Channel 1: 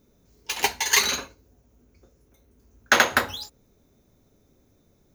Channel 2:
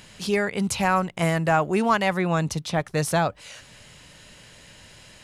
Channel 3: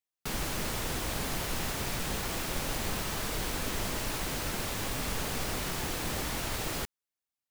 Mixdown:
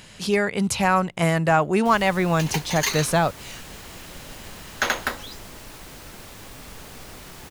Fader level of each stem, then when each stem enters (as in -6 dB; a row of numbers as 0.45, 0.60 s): -5.5, +2.0, -7.5 dB; 1.90, 0.00, 1.60 s